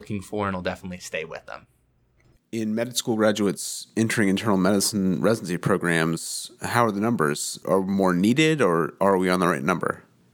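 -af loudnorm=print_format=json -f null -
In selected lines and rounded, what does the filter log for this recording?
"input_i" : "-22.9",
"input_tp" : "-3.7",
"input_lra" : "5.6",
"input_thresh" : "-33.4",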